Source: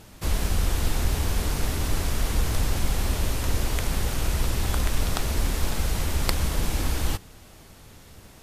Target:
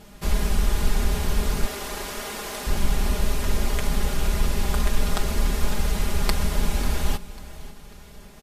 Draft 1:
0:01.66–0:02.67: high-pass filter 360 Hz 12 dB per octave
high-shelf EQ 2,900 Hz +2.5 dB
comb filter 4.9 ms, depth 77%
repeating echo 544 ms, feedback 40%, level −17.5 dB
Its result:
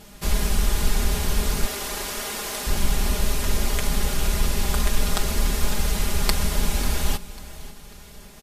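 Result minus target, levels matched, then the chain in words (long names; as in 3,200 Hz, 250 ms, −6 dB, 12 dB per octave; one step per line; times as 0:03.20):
8,000 Hz band +4.0 dB
0:01.66–0:02.67: high-pass filter 360 Hz 12 dB per octave
high-shelf EQ 2,900 Hz −3.5 dB
comb filter 4.9 ms, depth 77%
repeating echo 544 ms, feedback 40%, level −17.5 dB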